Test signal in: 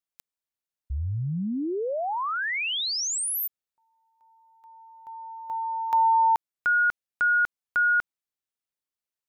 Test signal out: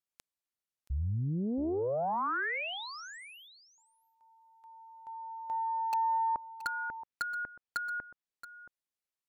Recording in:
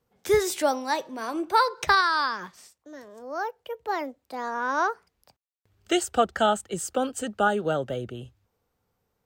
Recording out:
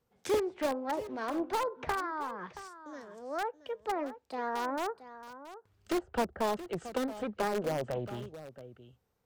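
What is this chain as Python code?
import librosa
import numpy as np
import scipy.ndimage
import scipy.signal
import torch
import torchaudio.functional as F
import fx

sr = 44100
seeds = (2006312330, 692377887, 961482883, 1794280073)

p1 = fx.env_lowpass_down(x, sr, base_hz=700.0, full_db=-22.5)
p2 = (np.mod(10.0 ** (21.0 / 20.0) * p1 + 1.0, 2.0) - 1.0) / 10.0 ** (21.0 / 20.0)
p3 = p1 + F.gain(torch.from_numpy(p2), -7.0).numpy()
p4 = p3 + 10.0 ** (-14.0 / 20.0) * np.pad(p3, (int(675 * sr / 1000.0), 0))[:len(p3)]
p5 = fx.doppler_dist(p4, sr, depth_ms=0.53)
y = F.gain(torch.from_numpy(p5), -6.5).numpy()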